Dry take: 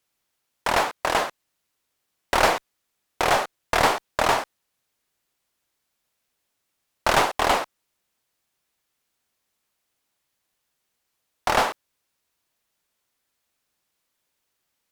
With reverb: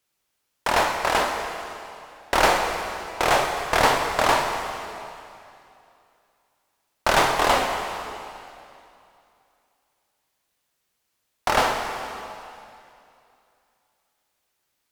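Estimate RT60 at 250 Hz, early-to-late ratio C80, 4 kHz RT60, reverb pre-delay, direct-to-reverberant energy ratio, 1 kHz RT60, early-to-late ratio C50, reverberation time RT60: 2.7 s, 4.5 dB, 2.5 s, 16 ms, 2.5 dB, 2.7 s, 4.0 dB, 2.7 s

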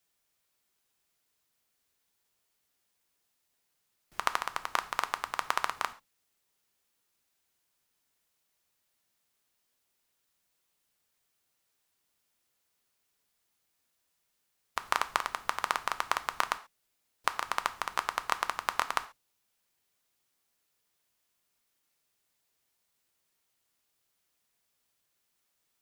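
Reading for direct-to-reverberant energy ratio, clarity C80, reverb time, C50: 10.5 dB, 21.0 dB, non-exponential decay, 17.0 dB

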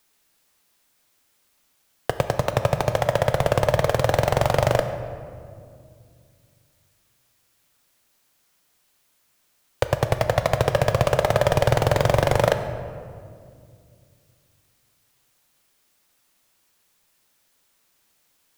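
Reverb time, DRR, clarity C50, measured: 2.3 s, 7.5 dB, 9.0 dB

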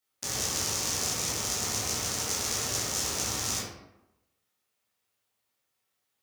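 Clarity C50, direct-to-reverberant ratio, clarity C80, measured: 1.0 dB, −8.0 dB, 4.5 dB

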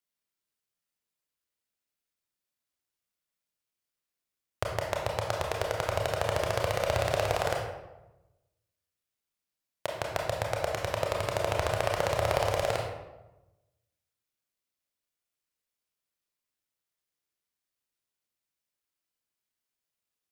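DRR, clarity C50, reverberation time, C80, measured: −0.5 dB, 2.5 dB, 1.0 s, 5.5 dB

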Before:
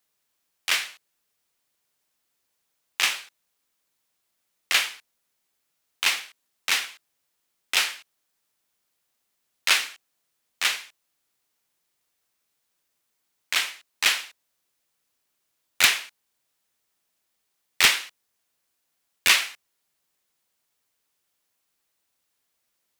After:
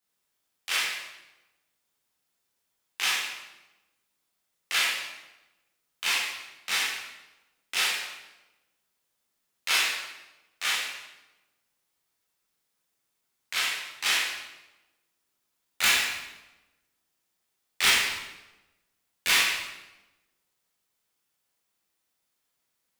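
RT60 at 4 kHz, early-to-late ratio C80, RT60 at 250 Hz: 0.85 s, 3.0 dB, 1.2 s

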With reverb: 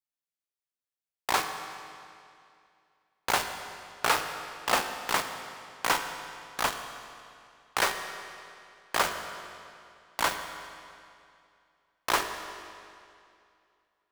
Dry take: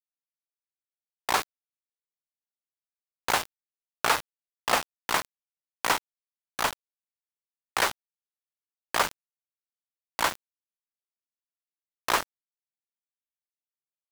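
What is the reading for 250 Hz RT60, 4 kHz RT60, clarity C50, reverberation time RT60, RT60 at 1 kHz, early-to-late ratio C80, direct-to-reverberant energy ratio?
2.5 s, 2.2 s, 7.0 dB, 2.5 s, 2.5 s, 8.0 dB, 6.0 dB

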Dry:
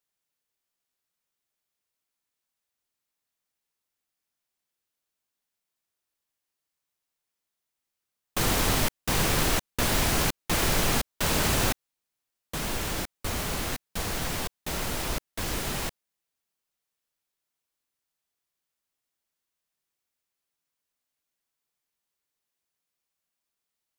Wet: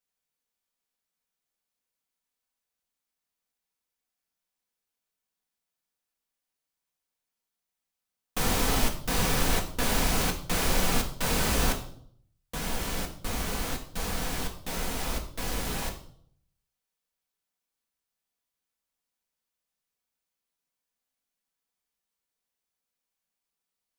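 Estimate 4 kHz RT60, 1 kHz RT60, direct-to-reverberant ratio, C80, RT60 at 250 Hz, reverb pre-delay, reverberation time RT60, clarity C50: 0.55 s, 0.55 s, 2.0 dB, 14.0 dB, 0.75 s, 4 ms, 0.60 s, 10.0 dB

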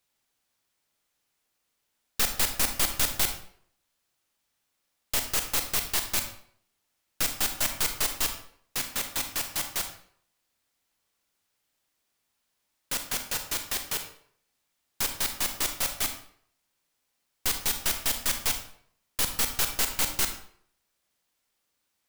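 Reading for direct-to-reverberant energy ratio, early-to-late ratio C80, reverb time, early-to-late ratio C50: 6.0 dB, 11.5 dB, 0.60 s, 8.5 dB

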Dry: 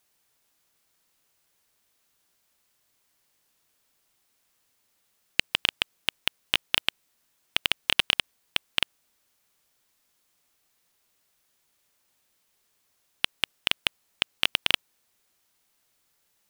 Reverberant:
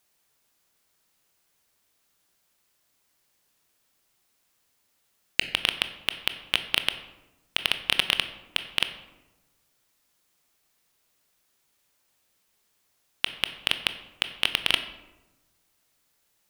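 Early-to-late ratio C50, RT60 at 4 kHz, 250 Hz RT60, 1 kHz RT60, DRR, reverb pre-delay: 11.5 dB, 0.60 s, 1.3 s, 1.0 s, 9.0 dB, 18 ms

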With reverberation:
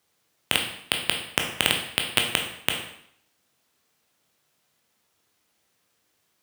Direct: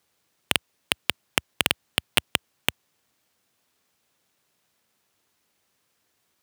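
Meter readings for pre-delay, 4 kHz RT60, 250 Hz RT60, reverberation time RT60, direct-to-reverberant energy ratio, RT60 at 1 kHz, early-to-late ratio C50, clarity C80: 7 ms, 0.65 s, 0.65 s, 0.65 s, 2.0 dB, 0.70 s, 6.0 dB, 9.0 dB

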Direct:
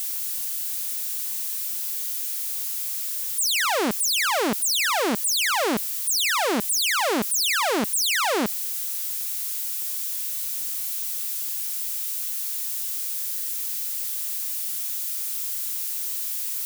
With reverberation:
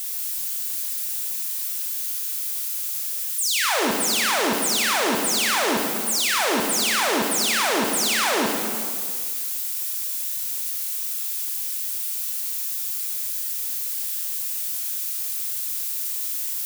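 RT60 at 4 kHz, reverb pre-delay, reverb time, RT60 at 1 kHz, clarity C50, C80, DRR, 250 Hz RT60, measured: 1.9 s, 15 ms, 2.0 s, 2.0 s, 1.5 dB, 3.0 dB, 0.0 dB, 2.0 s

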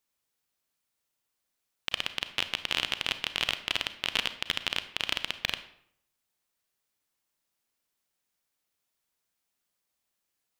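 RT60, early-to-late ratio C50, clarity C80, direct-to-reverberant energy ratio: 0.70 s, 12.5 dB, 15.5 dB, 11.0 dB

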